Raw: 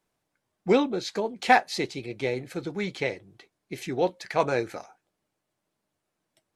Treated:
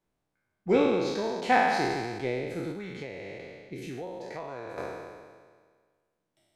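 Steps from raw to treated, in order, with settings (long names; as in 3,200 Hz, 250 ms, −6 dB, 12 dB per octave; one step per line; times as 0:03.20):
peak hold with a decay on every bin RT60 1.69 s
spectral tilt −1.5 dB per octave
0:02.71–0:04.78: downward compressor 12 to 1, threshold −28 dBFS, peak gain reduction 14 dB
level −7 dB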